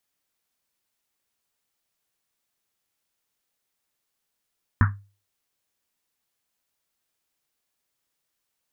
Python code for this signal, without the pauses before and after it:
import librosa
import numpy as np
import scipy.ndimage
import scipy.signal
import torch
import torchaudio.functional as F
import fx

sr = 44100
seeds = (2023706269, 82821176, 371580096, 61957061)

y = fx.risset_drum(sr, seeds[0], length_s=1.1, hz=100.0, decay_s=0.35, noise_hz=1400.0, noise_width_hz=760.0, noise_pct=25)